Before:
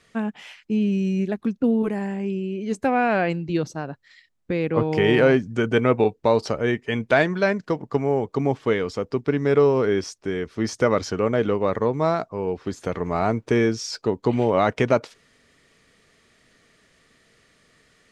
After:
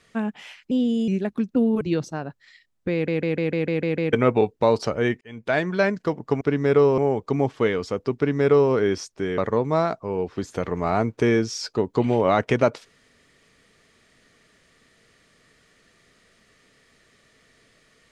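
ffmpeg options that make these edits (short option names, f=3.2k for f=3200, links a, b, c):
-filter_complex "[0:a]asplit=16[a][b][c][d][e][f][g][h][i][j][k][l][m][n][o][p];[a]atrim=end=0.714[q];[b]atrim=start=0.71:end=1.15,asetpts=PTS-STARTPTS,asetrate=52479,aresample=44100[r];[c]atrim=start=1.146:end=1.882[s];[d]atrim=start=3.438:end=4.712[t];[e]atrim=start=4.558:end=4.712[u];[f]atrim=start=4.558:end=4.712[v];[g]atrim=start=4.558:end=4.712[w];[h]atrim=start=4.558:end=4.712[x];[i]atrim=start=4.558:end=4.712[y];[j]atrim=start=4.558:end=4.712[z];[k]atrim=start=4.558:end=4.712[aa];[l]atrim=start=5.758:end=6.84,asetpts=PTS-STARTPTS,afade=t=out:st=1.078:d=0.004:c=hsin[ab];[m]atrim=start=6.84:end=8.042,asetpts=PTS-STARTPTS,afade=t=in:d=0.56[ac];[n]atrim=start=9.218:end=9.792[ad];[o]atrim=start=8.038:end=10.442[ae];[p]atrim=start=11.668[af];[q][r]acrossfade=d=0.004:c1=hsin:c2=hsin[ag];[ag][s]acrossfade=d=0.004:c1=hsin:c2=hsin[ah];[ah][t]acrossfade=d=0.004:c1=hsin:c2=hsin[ai];[ai][u]acrossfade=d=0.004:c1=hsin:c2=hsin[aj];[aj][v]acrossfade=d=0.004:c1=hsin:c2=hsin[ak];[ak][w]acrossfade=d=0.004:c1=hsin:c2=hsin[al];[al][x]acrossfade=d=0.004:c1=hsin:c2=hsin[am];[am][y]acrossfade=d=0.004:c1=hsin:c2=hsin[an];[an][z]acrossfade=d=0.004:c1=hsin:c2=hsin[ao];[ao][aa]acrossfade=d=0.004:c1=hsin:c2=hsin[ap];[ab][ac]concat=n=2:v=0:a=1[aq];[ap][aq]acrossfade=d=0.004:c1=hsin:c2=hsin[ar];[ar][ad]acrossfade=d=0.004:c1=hsin:c2=hsin[as];[as][ae]acrossfade=d=0.004:c1=hsin:c2=hsin[at];[at][af]acrossfade=d=0.004:c1=hsin:c2=hsin"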